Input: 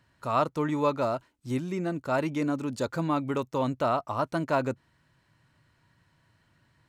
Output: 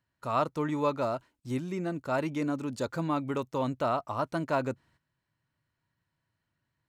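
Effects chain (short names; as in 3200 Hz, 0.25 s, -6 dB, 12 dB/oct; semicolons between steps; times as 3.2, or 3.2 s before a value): gate -59 dBFS, range -13 dB; gain -2.5 dB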